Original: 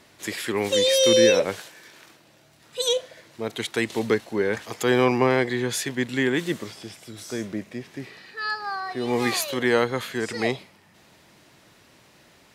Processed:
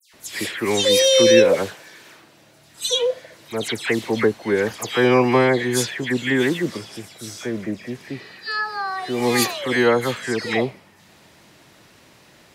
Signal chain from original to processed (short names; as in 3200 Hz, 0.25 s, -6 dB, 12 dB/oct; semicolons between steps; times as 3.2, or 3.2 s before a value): dispersion lows, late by 0.137 s, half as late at 2800 Hz; gain +4 dB